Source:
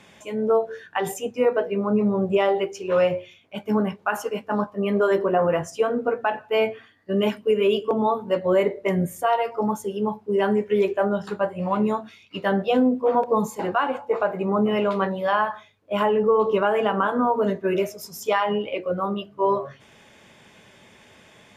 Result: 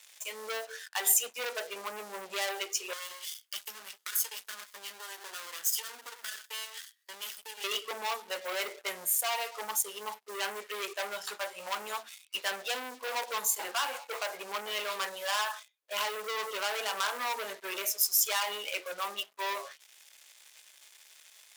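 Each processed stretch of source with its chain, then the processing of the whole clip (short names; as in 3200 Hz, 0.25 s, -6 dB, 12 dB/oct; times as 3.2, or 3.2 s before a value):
2.93–7.64 minimum comb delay 0.62 ms + high shelf 3100 Hz +11.5 dB + compressor 12:1, threshold -35 dBFS
whole clip: sample leveller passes 3; HPF 400 Hz 12 dB/oct; differentiator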